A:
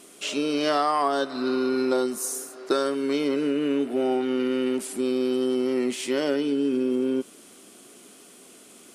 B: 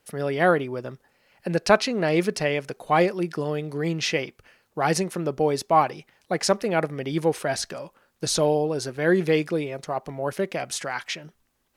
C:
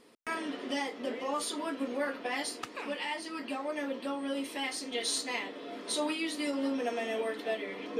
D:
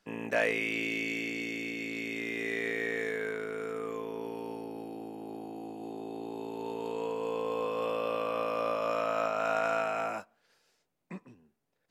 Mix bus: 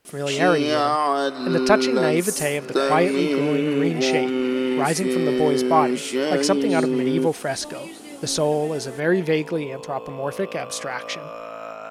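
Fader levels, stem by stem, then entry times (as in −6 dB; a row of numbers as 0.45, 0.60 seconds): +2.5, +0.5, −7.0, −4.0 decibels; 0.05, 0.00, 1.65, 2.45 seconds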